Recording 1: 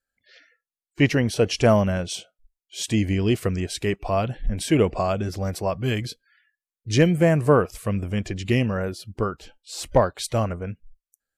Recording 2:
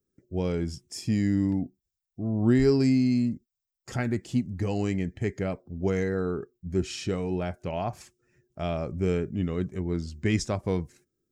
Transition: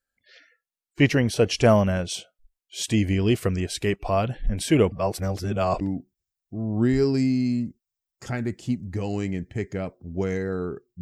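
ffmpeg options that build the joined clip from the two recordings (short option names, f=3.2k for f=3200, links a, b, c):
-filter_complex "[0:a]apad=whole_dur=11.01,atrim=end=11.01,asplit=2[a][b];[a]atrim=end=4.922[c];[b]atrim=start=4.918:end=5.812,asetpts=PTS-STARTPTS,areverse[d];[1:a]atrim=start=1.468:end=6.67[e];[c][d]acrossfade=d=0.004:c1=hsin:c2=hsin[f];[f][e]acrossfade=d=0.004:c1=hsin:c2=hsin"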